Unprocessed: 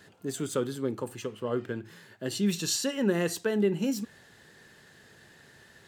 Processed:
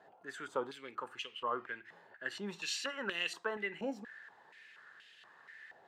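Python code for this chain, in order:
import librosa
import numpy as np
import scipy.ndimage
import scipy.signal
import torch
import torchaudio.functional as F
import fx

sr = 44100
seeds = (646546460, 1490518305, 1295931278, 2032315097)

y = fx.filter_held_bandpass(x, sr, hz=4.2, low_hz=750.0, high_hz=2900.0)
y = F.gain(torch.from_numpy(y), 7.5).numpy()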